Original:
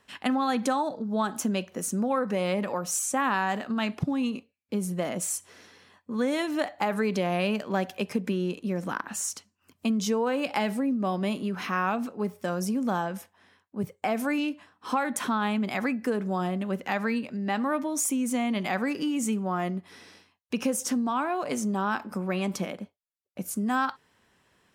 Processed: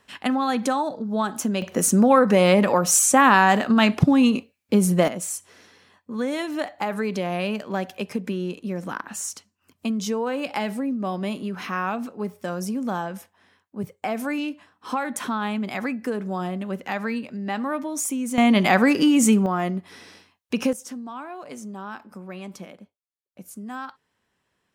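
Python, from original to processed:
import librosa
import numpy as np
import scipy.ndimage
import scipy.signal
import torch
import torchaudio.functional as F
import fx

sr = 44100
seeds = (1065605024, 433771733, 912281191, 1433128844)

y = fx.gain(x, sr, db=fx.steps((0.0, 3.0), (1.62, 11.0), (5.08, 0.5), (18.38, 11.0), (19.46, 4.5), (20.73, -8.0)))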